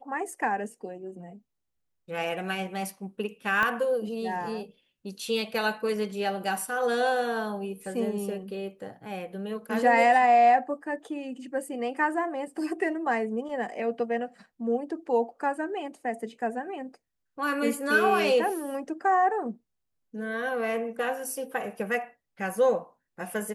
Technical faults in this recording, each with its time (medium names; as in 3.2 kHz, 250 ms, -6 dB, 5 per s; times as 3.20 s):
3.63 s: pop -14 dBFS